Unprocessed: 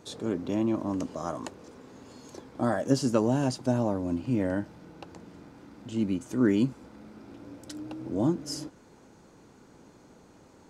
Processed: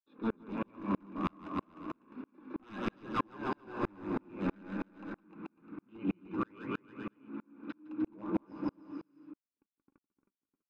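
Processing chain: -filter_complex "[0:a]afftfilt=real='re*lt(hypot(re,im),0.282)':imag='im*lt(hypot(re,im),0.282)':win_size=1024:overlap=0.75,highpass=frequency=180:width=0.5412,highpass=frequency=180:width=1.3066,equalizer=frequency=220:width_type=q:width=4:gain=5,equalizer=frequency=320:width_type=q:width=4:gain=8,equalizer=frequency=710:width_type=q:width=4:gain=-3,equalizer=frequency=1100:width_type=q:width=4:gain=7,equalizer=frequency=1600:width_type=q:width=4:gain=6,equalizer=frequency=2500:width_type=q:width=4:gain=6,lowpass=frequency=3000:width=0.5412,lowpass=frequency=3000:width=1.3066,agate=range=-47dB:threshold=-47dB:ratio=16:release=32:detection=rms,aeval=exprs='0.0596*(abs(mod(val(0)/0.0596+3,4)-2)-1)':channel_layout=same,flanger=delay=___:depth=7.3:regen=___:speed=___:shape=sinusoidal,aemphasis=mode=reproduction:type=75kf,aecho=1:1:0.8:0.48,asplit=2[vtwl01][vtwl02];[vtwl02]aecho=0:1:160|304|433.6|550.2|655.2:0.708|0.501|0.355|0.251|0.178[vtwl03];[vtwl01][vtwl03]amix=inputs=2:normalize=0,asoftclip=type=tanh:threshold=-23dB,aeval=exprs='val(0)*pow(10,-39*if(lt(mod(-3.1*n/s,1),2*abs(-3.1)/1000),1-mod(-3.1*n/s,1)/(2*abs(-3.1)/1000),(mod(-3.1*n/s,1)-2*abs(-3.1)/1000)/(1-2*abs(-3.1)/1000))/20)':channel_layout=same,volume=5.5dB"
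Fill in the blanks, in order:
3.4, 49, 0.41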